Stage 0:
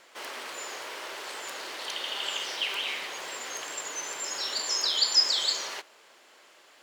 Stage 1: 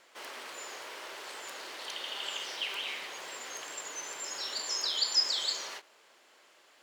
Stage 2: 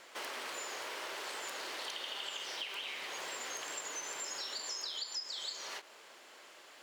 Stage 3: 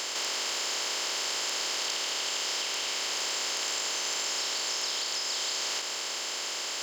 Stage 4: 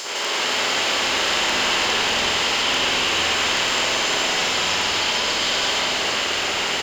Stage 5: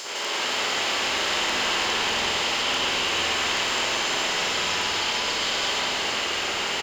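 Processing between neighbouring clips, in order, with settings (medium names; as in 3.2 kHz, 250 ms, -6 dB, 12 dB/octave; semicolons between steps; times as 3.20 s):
endings held to a fixed fall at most 310 dB/s; trim -5 dB
compression 8:1, threshold -44 dBFS, peak gain reduction 21.5 dB; trim +5.5 dB
spectral levelling over time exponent 0.2
frequency-shifting echo 345 ms, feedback 46%, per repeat -150 Hz, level -4 dB; spring tank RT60 1.9 s, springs 47/59 ms, chirp 60 ms, DRR -10 dB; trim +2.5 dB
speakerphone echo 180 ms, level -8 dB; trim -4.5 dB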